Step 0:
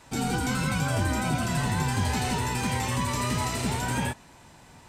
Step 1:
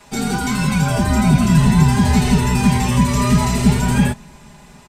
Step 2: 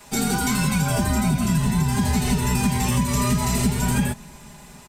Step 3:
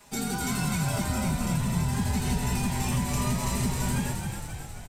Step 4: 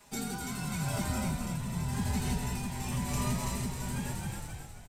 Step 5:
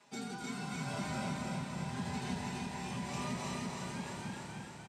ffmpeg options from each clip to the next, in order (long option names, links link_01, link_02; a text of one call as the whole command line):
ffmpeg -i in.wav -filter_complex "[0:a]acrossover=split=210[link_01][link_02];[link_01]dynaudnorm=framelen=270:gausssize=7:maxgain=12.5dB[link_03];[link_03][link_02]amix=inputs=2:normalize=0,aecho=1:1:4.9:0.99,volume=4dB" out.wav
ffmpeg -i in.wav -af "acompressor=threshold=-16dB:ratio=6,highshelf=frequency=8700:gain=12,volume=-1.5dB" out.wav
ffmpeg -i in.wav -filter_complex "[0:a]asplit=9[link_01][link_02][link_03][link_04][link_05][link_06][link_07][link_08][link_09];[link_02]adelay=268,afreqshift=-48,volume=-5dB[link_10];[link_03]adelay=536,afreqshift=-96,volume=-9.4dB[link_11];[link_04]adelay=804,afreqshift=-144,volume=-13.9dB[link_12];[link_05]adelay=1072,afreqshift=-192,volume=-18.3dB[link_13];[link_06]adelay=1340,afreqshift=-240,volume=-22.7dB[link_14];[link_07]adelay=1608,afreqshift=-288,volume=-27.2dB[link_15];[link_08]adelay=1876,afreqshift=-336,volume=-31.6dB[link_16];[link_09]adelay=2144,afreqshift=-384,volume=-36.1dB[link_17];[link_01][link_10][link_11][link_12][link_13][link_14][link_15][link_16][link_17]amix=inputs=9:normalize=0,volume=-8dB" out.wav
ffmpeg -i in.wav -af "tremolo=f=0.92:d=0.41,volume=-4dB" out.wav
ffmpeg -i in.wav -filter_complex "[0:a]highpass=170,lowpass=5500,asplit=2[link_01][link_02];[link_02]aecho=0:1:306|612|918|1224|1530|1836|2142:0.708|0.354|0.177|0.0885|0.0442|0.0221|0.0111[link_03];[link_01][link_03]amix=inputs=2:normalize=0,volume=-4dB" out.wav